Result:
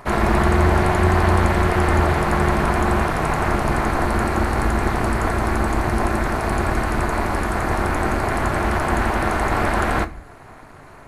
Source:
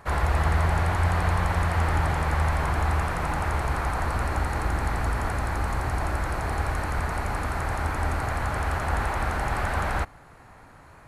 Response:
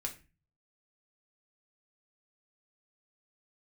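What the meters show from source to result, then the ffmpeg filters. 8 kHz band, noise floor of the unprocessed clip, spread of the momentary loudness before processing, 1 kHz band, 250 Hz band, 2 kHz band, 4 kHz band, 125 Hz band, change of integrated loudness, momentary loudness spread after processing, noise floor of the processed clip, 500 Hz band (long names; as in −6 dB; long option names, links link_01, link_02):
+6.5 dB, −50 dBFS, 5 LU, +7.0 dB, +13.0 dB, +6.5 dB, +6.5 dB, +4.0 dB, +6.5 dB, 5 LU, −42 dBFS, +11.0 dB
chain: -filter_complex "[0:a]equalizer=frequency=660:width_type=o:width=0.4:gain=4,tremolo=f=280:d=0.947,asplit=2[link_01][link_02];[1:a]atrim=start_sample=2205[link_03];[link_02][link_03]afir=irnorm=-1:irlink=0,volume=-1dB[link_04];[link_01][link_04]amix=inputs=2:normalize=0,volume=5.5dB"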